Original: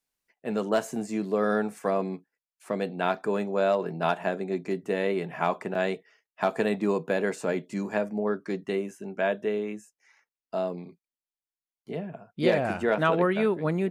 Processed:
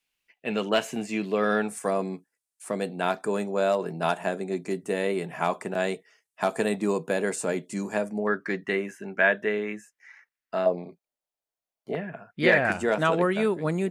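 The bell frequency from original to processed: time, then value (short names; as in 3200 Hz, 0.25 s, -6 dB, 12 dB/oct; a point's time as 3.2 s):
bell +13.5 dB 0.98 oct
2700 Hz
from 1.68 s 9000 Hz
from 8.27 s 1800 Hz
from 10.66 s 630 Hz
from 11.95 s 1800 Hz
from 12.72 s 7800 Hz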